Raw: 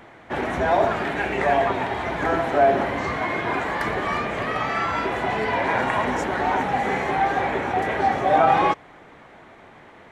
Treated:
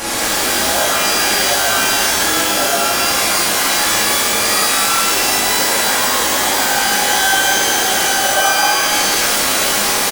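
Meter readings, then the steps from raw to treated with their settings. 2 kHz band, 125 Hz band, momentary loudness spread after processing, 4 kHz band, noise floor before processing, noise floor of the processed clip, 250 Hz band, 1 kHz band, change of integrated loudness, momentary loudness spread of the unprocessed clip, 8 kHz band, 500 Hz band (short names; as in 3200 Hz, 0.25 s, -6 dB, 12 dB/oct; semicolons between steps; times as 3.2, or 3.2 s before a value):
+10.5 dB, -1.0 dB, 1 LU, +23.5 dB, -48 dBFS, -16 dBFS, +3.0 dB, +4.0 dB, +10.0 dB, 7 LU, +35.0 dB, +1.5 dB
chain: delta modulation 64 kbps, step -19.5 dBFS; comb 3.6 ms, depth 37%; compressor 3:1, threshold -22 dBFS, peak gain reduction 8 dB; tone controls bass -6 dB, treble +10 dB; shimmer reverb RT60 1.5 s, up +12 st, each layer -2 dB, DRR -8 dB; gain -3 dB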